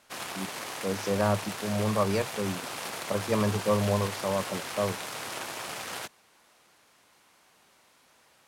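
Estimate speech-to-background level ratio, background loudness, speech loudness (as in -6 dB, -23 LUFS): 6.0 dB, -36.0 LUFS, -30.0 LUFS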